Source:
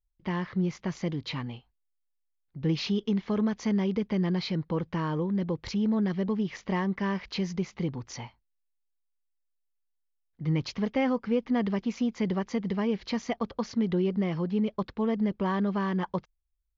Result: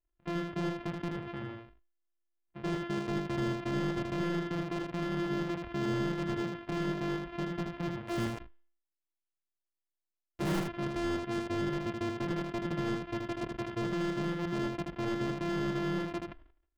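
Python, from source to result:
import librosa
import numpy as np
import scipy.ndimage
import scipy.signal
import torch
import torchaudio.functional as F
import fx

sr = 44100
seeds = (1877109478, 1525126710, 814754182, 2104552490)

p1 = np.r_[np.sort(x[:len(x) // 128 * 128].reshape(-1, 128), axis=1).ravel(), x[len(x) // 128 * 128:]]
p2 = scipy.signal.sosfilt(scipy.signal.butter(4, 3000.0, 'lowpass', fs=sr, output='sos'), p1)
p3 = fx.level_steps(p2, sr, step_db=15)
p4 = p2 + (p3 * 10.0 ** (-1.5 / 20.0))
p5 = fx.leveller(p4, sr, passes=5, at=(8.05, 10.6))
p6 = np.clip(p5, -10.0 ** (-22.0 / 20.0), 10.0 ** (-22.0 / 20.0))
p7 = p6 + fx.echo_single(p6, sr, ms=79, db=-4.5, dry=0)
p8 = fx.sustainer(p7, sr, db_per_s=100.0)
y = p8 * 10.0 ** (-8.5 / 20.0)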